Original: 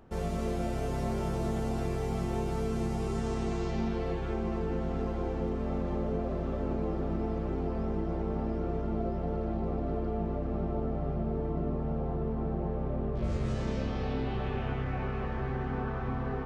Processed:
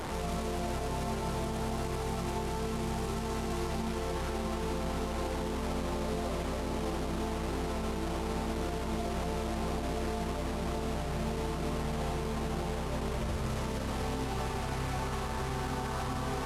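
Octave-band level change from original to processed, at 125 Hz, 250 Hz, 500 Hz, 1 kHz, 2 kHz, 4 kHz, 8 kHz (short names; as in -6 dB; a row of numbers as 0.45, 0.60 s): -3.0 dB, -2.5 dB, -2.0 dB, +2.5 dB, +4.0 dB, +9.0 dB, n/a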